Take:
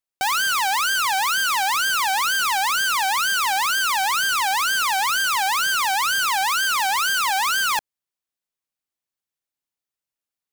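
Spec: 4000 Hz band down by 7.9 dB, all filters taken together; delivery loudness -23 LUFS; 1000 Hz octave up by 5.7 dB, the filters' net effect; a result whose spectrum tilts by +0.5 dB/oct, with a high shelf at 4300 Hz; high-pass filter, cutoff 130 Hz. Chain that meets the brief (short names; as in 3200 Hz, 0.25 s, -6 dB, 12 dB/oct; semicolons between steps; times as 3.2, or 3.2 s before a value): HPF 130 Hz; bell 1000 Hz +8 dB; bell 4000 Hz -8.5 dB; high shelf 4300 Hz -6 dB; gain -5.5 dB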